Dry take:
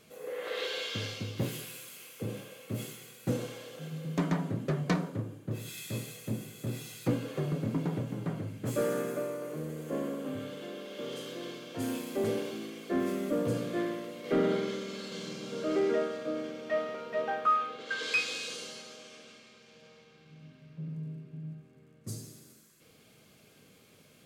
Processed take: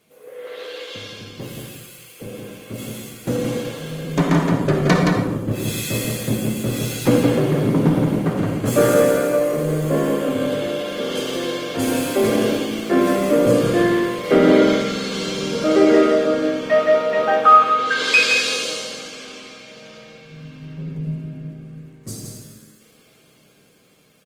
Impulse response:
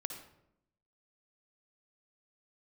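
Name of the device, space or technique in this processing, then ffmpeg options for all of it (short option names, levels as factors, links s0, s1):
far-field microphone of a smart speaker: -filter_complex "[0:a]aecho=1:1:170:0.596[s0];[1:a]atrim=start_sample=2205[s1];[s0][s1]afir=irnorm=-1:irlink=0,highpass=f=150:p=1,dynaudnorm=f=640:g=11:m=6.31,volume=1.19" -ar 48000 -c:a libopus -b:a 24k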